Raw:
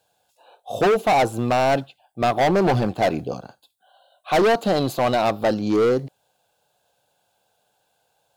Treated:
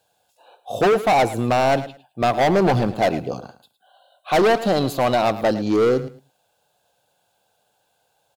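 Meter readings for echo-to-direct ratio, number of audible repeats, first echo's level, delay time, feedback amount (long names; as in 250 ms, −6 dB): −15.0 dB, 2, −15.0 dB, 108 ms, 19%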